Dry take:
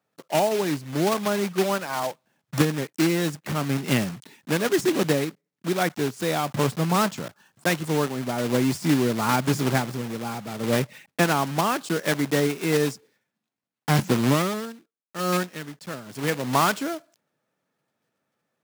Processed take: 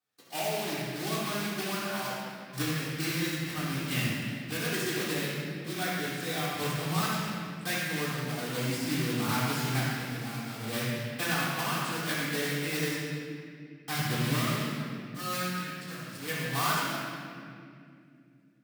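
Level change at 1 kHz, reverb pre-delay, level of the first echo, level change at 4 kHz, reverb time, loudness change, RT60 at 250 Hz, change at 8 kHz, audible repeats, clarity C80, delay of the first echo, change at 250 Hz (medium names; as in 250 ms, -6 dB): -7.5 dB, 3 ms, no echo, -2.0 dB, 2.4 s, -7.0 dB, 3.8 s, -4.0 dB, no echo, -1.0 dB, no echo, -9.0 dB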